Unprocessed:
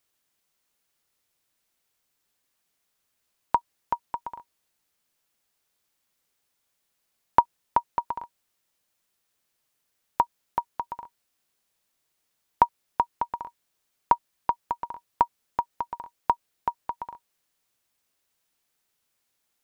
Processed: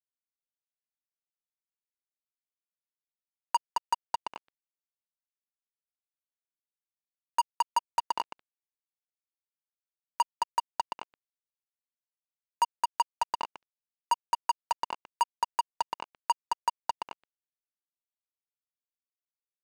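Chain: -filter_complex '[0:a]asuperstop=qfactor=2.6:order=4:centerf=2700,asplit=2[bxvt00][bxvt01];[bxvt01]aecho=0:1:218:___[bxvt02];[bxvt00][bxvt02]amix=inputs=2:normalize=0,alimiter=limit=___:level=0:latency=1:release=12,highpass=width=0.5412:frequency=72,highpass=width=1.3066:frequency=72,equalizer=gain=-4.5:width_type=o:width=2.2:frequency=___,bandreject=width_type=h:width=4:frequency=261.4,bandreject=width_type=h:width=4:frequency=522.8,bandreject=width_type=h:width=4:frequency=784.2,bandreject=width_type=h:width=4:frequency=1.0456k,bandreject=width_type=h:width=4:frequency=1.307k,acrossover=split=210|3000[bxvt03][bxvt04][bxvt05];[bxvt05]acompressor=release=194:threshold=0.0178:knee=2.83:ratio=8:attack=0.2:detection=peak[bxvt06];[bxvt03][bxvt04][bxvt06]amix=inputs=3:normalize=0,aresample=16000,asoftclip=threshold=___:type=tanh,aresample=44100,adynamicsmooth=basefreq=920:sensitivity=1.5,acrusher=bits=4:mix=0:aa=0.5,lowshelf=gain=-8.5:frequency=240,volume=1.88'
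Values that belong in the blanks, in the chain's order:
0.398, 0.211, 150, 0.0562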